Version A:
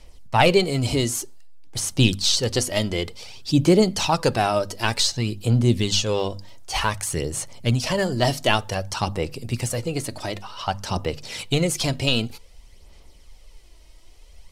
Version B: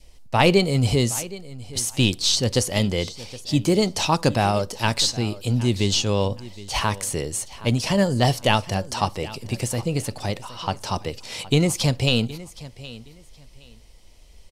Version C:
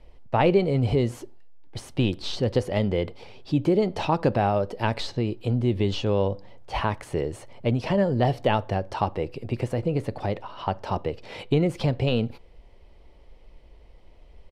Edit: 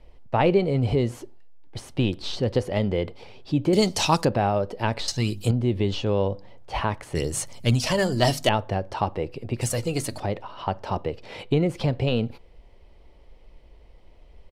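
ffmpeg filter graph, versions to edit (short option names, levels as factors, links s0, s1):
-filter_complex "[0:a]asplit=3[s0][s1][s2];[2:a]asplit=5[s3][s4][s5][s6][s7];[s3]atrim=end=3.732[s8];[1:a]atrim=start=3.728:end=4.252[s9];[s4]atrim=start=4.248:end=5.082[s10];[s0]atrim=start=5.078:end=5.512[s11];[s5]atrim=start=5.508:end=7.152[s12];[s1]atrim=start=7.148:end=8.492[s13];[s6]atrim=start=8.488:end=9.612[s14];[s2]atrim=start=9.608:end=10.202[s15];[s7]atrim=start=10.198[s16];[s8][s9]acrossfade=d=0.004:c1=hsin:c2=hsin[s17];[s17][s10]acrossfade=d=0.004:c1=hsin:c2=hsin[s18];[s18][s11]acrossfade=d=0.004:c1=hsin:c2=hsin[s19];[s19][s12]acrossfade=d=0.004:c1=hsin:c2=hsin[s20];[s20][s13]acrossfade=d=0.004:c1=hsin:c2=hsin[s21];[s21][s14]acrossfade=d=0.004:c1=hsin:c2=hsin[s22];[s22][s15]acrossfade=d=0.004:c1=hsin:c2=hsin[s23];[s23][s16]acrossfade=d=0.004:c1=hsin:c2=hsin"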